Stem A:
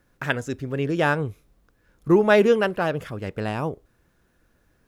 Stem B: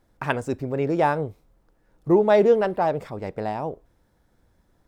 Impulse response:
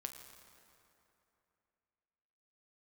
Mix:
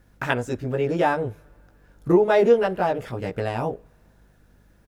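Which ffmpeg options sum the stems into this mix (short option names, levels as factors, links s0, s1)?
-filter_complex "[0:a]volume=1.19,asplit=2[s0][s1];[s1]volume=0.0794[s2];[1:a]adelay=17,volume=0.891,asplit=2[s3][s4];[s4]apad=whole_len=214823[s5];[s0][s5]sidechaincompress=threshold=0.0398:ratio=4:attack=12:release=479[s6];[2:a]atrim=start_sample=2205[s7];[s2][s7]afir=irnorm=-1:irlink=0[s8];[s6][s3][s8]amix=inputs=3:normalize=0,bandreject=f=1100:w=17,aeval=exprs='val(0)+0.00141*(sin(2*PI*50*n/s)+sin(2*PI*2*50*n/s)/2+sin(2*PI*3*50*n/s)/3+sin(2*PI*4*50*n/s)/4+sin(2*PI*5*50*n/s)/5)':c=same"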